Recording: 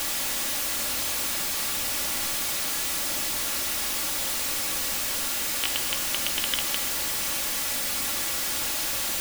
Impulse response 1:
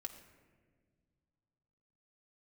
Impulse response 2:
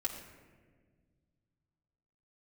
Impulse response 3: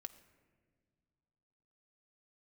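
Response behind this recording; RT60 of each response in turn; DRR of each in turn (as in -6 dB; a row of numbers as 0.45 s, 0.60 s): 1; 1.7 s, 1.6 s, no single decay rate; 2.0 dB, -3.0 dB, 8.0 dB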